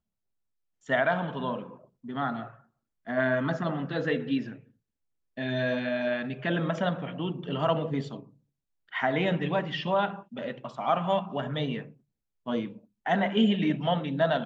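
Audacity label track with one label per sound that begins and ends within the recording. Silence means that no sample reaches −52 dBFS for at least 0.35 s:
0.860000	2.600000	sound
3.070000	4.680000	sound
5.370000	8.330000	sound
8.890000	11.940000	sound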